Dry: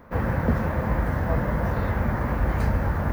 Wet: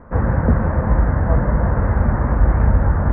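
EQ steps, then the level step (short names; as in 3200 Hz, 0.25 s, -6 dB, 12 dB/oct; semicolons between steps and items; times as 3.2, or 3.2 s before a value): LPF 1700 Hz 24 dB/oct; low shelf 68 Hz +9.5 dB; +4.5 dB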